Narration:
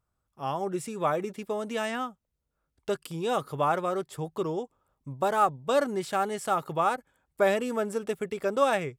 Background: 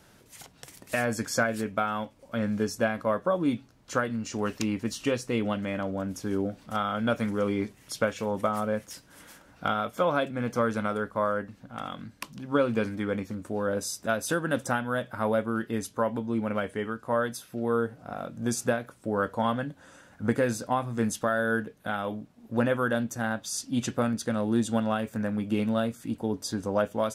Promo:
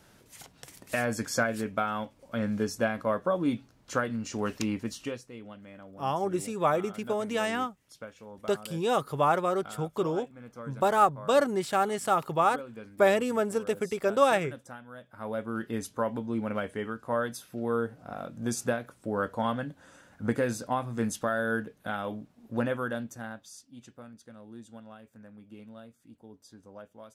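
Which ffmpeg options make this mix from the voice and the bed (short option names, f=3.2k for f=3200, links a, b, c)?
-filter_complex "[0:a]adelay=5600,volume=1.5dB[a];[1:a]volume=13dB,afade=t=out:st=4.71:d=0.59:silence=0.16788,afade=t=in:st=15.08:d=0.6:silence=0.188365,afade=t=out:st=22.42:d=1.26:silence=0.11885[b];[a][b]amix=inputs=2:normalize=0"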